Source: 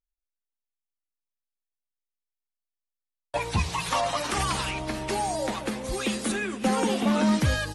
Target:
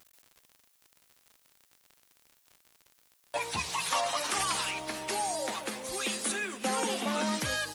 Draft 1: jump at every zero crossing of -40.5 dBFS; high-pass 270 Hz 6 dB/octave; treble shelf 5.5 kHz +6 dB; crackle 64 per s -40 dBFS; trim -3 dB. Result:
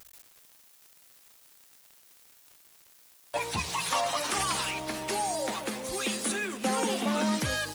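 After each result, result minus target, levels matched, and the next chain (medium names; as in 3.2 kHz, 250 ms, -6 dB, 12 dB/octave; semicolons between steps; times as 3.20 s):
jump at every zero crossing: distortion +10 dB; 250 Hz band +3.5 dB
jump at every zero crossing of -50.5 dBFS; high-pass 270 Hz 6 dB/octave; treble shelf 5.5 kHz +6 dB; crackle 64 per s -40 dBFS; trim -3 dB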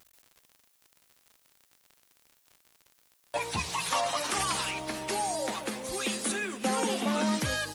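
250 Hz band +3.5 dB
jump at every zero crossing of -50.5 dBFS; high-pass 550 Hz 6 dB/octave; treble shelf 5.5 kHz +6 dB; crackle 64 per s -40 dBFS; trim -3 dB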